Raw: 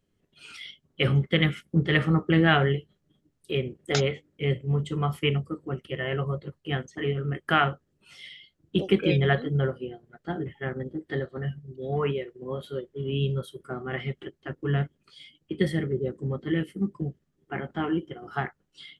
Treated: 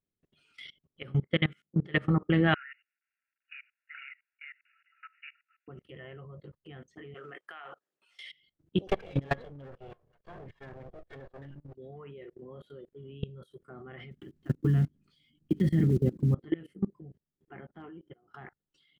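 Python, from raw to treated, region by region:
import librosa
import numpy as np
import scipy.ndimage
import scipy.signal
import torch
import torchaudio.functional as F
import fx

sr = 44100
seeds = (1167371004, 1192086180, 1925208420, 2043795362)

y = fx.chain(x, sr, fx.highpass(hz=99.0, slope=12),
    fx.upward_expand(threshold_db=-34.0, expansion=1.5), at=(1.03, 1.99))
y = fx.chain(y, sr, fx.cvsd(bps=32000),
    fx.brickwall_bandpass(low_hz=1300.0, high_hz=2900.0), at=(2.54, 5.68))
y = fx.chain(y, sr, fx.highpass(hz=710.0, slope=12),
    fx.over_compress(threshold_db=-29.0, ratio=-1.0), at=(7.14, 8.31))
y = fx.chain(y, sr, fx.lower_of_two(delay_ms=1.8),
    fx.high_shelf(hz=4900.0, db=-2.5), at=(8.87, 11.75))
y = fx.chain(y, sr, fx.block_float(bits=5),
    fx.low_shelf_res(hz=350.0, db=10.0, q=1.5), at=(14.11, 16.35))
y = fx.chain(y, sr, fx.high_shelf(hz=6200.0, db=-10.0),
    fx.clip_hard(threshold_db=-18.0),
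    fx.upward_expand(threshold_db=-48.0, expansion=1.5), at=(17.61, 18.34))
y = fx.high_shelf(y, sr, hz=3300.0, db=-6.5)
y = fx.level_steps(y, sr, step_db=23)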